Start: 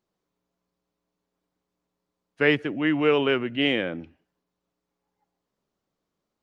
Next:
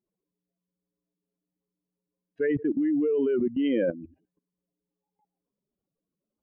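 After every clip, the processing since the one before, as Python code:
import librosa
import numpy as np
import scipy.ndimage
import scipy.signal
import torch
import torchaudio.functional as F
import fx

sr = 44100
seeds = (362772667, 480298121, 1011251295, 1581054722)

y = fx.spec_expand(x, sr, power=2.6)
y = fx.level_steps(y, sr, step_db=16)
y = y * librosa.db_to_amplitude(8.0)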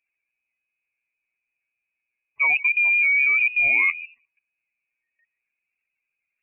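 y = fx.freq_invert(x, sr, carrier_hz=2700)
y = y * librosa.db_to_amplitude(5.5)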